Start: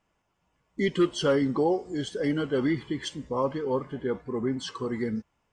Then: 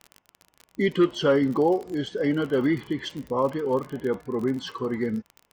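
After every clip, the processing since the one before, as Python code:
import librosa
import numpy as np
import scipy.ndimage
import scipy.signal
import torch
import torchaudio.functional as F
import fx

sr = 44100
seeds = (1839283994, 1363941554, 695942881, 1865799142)

y = scipy.signal.sosfilt(scipy.signal.bessel(2, 3500.0, 'lowpass', norm='mag', fs=sr, output='sos'), x)
y = fx.low_shelf(y, sr, hz=78.0, db=-8.5)
y = fx.dmg_crackle(y, sr, seeds[0], per_s=38.0, level_db=-35.0)
y = y * 10.0 ** (3.5 / 20.0)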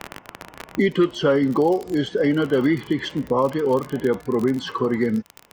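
y = fx.band_squash(x, sr, depth_pct=70)
y = y * 10.0 ** (4.0 / 20.0)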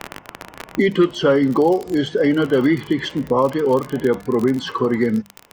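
y = fx.hum_notches(x, sr, base_hz=50, count=4)
y = y * 10.0 ** (3.0 / 20.0)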